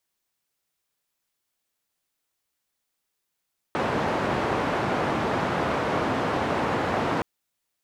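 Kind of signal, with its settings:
band-limited noise 96–1,000 Hz, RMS −25.5 dBFS 3.47 s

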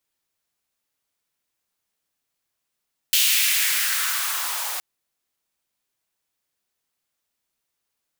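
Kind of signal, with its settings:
filter sweep on noise white, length 1.67 s highpass, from 3,100 Hz, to 760 Hz, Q 2.3, gain ramp −10.5 dB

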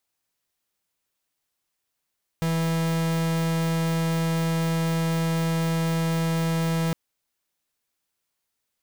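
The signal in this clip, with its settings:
pulse wave 164 Hz, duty 44% −24 dBFS 4.51 s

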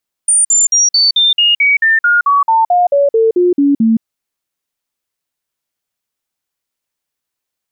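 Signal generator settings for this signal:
stepped sweep 9,050 Hz down, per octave 3, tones 17, 0.17 s, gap 0.05 s −7 dBFS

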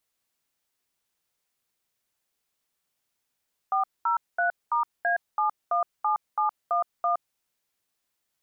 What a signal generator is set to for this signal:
touch tones "403*A717711", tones 117 ms, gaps 215 ms, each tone −24 dBFS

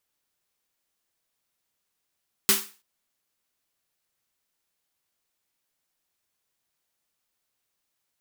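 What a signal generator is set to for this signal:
synth snare length 0.33 s, tones 210 Hz, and 390 Hz, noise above 960 Hz, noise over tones 11.5 dB, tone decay 0.29 s, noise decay 0.35 s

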